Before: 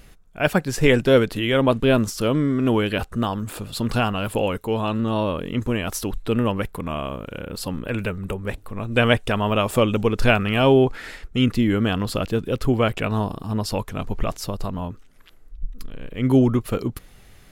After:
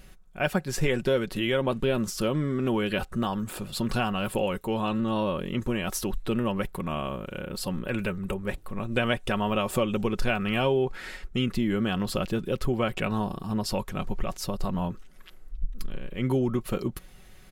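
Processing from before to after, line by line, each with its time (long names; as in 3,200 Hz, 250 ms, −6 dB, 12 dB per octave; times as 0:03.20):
0:14.63–0:15.99: clip gain +3.5 dB
whole clip: comb filter 5.4 ms, depth 45%; downward compressor 3 to 1, threshold −19 dBFS; level −3.5 dB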